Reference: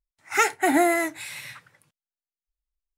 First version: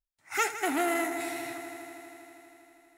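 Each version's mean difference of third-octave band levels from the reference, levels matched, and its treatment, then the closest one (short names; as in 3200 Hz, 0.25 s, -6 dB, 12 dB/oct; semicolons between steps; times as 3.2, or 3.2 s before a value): 7.0 dB: high shelf 9000 Hz +5 dB; multi-head echo 80 ms, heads all three, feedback 74%, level -16.5 dB; core saturation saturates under 1600 Hz; gain -6.5 dB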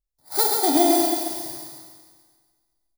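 10.0 dB: FFT order left unsorted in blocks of 16 samples; band shelf 1900 Hz -10 dB; on a send: feedback echo 0.136 s, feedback 49%, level -5 dB; on the sum: Schroeder reverb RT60 1.6 s, combs from 28 ms, DRR 2 dB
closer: first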